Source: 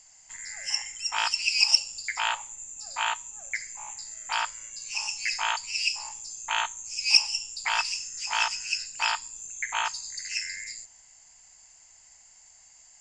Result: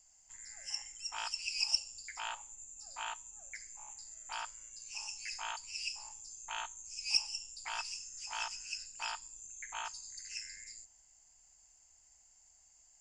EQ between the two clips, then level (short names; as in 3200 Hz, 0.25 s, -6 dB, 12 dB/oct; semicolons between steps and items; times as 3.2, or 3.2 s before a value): graphic EQ 125/250/500/1000/2000/4000/8000 Hz -10/-4/-6/-7/-11/-9/-5 dB; -2.5 dB